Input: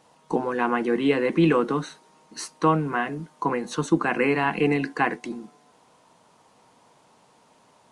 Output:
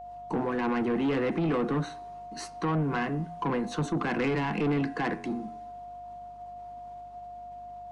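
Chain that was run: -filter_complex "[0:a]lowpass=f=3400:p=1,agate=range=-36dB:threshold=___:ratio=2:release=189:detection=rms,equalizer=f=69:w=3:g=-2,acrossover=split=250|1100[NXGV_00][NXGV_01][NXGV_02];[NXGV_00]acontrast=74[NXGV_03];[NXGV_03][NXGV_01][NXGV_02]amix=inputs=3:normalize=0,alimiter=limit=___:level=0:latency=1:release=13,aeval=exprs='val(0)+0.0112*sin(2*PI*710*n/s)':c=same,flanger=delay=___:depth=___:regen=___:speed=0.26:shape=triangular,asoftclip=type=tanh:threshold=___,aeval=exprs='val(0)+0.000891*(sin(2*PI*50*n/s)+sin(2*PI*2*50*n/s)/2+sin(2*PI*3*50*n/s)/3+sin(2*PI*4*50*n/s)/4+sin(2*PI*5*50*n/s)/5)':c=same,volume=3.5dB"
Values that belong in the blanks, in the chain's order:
-53dB, -14.5dB, 8, 3.6, -89, -26.5dB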